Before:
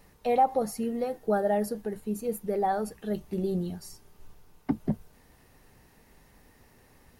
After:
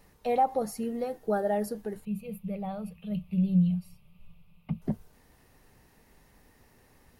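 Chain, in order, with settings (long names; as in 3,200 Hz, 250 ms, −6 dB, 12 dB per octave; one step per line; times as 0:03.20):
0:02.05–0:04.82: drawn EQ curve 120 Hz 0 dB, 180 Hz +12 dB, 300 Hz −27 dB, 560 Hz −3 dB, 800 Hz −12 dB, 1,200 Hz −5 dB, 1,700 Hz −19 dB, 2,500 Hz +8 dB, 6,300 Hz −21 dB, 12,000 Hz −8 dB
level −2 dB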